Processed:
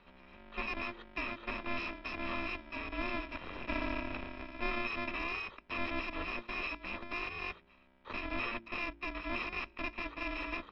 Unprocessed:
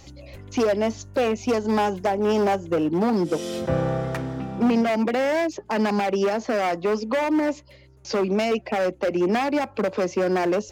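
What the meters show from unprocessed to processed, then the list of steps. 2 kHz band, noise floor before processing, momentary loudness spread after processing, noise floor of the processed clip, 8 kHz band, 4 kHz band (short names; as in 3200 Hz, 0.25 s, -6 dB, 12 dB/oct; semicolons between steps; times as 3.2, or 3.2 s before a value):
-5.5 dB, -50 dBFS, 6 LU, -63 dBFS, under -30 dB, -9.5 dB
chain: FFT order left unsorted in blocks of 128 samples; in parallel at -11.5 dB: Schmitt trigger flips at -23 dBFS; on the sum: mistuned SSB -220 Hz 220–3400 Hz; de-hum 57.11 Hz, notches 7; gain -4 dB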